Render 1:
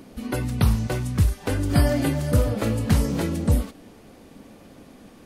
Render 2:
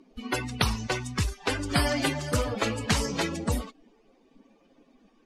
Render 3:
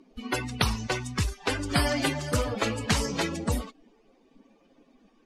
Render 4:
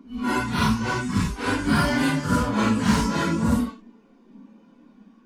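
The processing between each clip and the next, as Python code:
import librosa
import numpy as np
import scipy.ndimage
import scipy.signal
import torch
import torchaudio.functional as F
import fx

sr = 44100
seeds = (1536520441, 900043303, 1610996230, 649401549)

y1 = fx.bin_expand(x, sr, power=2.0)
y1 = scipy.signal.sosfilt(scipy.signal.butter(2, 5300.0, 'lowpass', fs=sr, output='sos'), y1)
y1 = fx.spectral_comp(y1, sr, ratio=2.0)
y2 = y1
y3 = fx.phase_scramble(y2, sr, seeds[0], window_ms=200)
y3 = np.clip(y3, -10.0 ** (-21.5 / 20.0), 10.0 ** (-21.5 / 20.0))
y3 = fx.small_body(y3, sr, hz=(210.0, 1000.0, 1400.0), ring_ms=30, db=14)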